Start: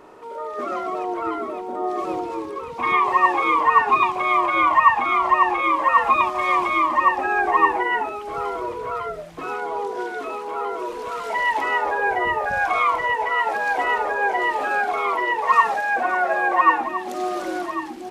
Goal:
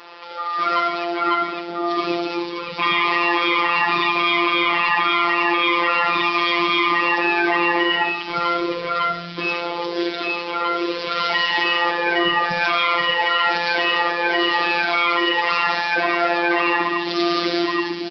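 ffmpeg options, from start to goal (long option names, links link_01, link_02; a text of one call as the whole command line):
ffmpeg -i in.wav -filter_complex "[0:a]highpass=79,aderivative,asplit=2[link_01][link_02];[link_02]aecho=0:1:67|134|201|268|335|402:0.237|0.13|0.0717|0.0395|0.0217|0.0119[link_03];[link_01][link_03]amix=inputs=2:normalize=0,asubboost=boost=11.5:cutoff=220,asplit=2[link_04][link_05];[link_05]asoftclip=type=hard:threshold=-28dB,volume=-9dB[link_06];[link_04][link_06]amix=inputs=2:normalize=0,afftfilt=real='hypot(re,im)*cos(PI*b)':imag='0':win_size=1024:overlap=0.75,afftfilt=real='re*lt(hypot(re,im),0.0891)':imag='im*lt(hypot(re,im),0.0891)':win_size=1024:overlap=0.75,aresample=11025,aresample=44100,alimiter=level_in=28.5dB:limit=-1dB:release=50:level=0:latency=1,volume=-3.5dB" out.wav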